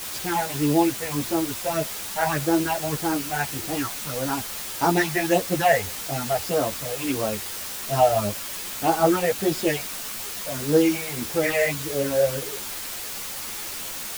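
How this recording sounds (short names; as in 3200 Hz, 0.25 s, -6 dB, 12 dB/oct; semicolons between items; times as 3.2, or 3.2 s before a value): phasing stages 6, 1.7 Hz, lowest notch 280–2700 Hz; a quantiser's noise floor 6-bit, dither triangular; a shimmering, thickened sound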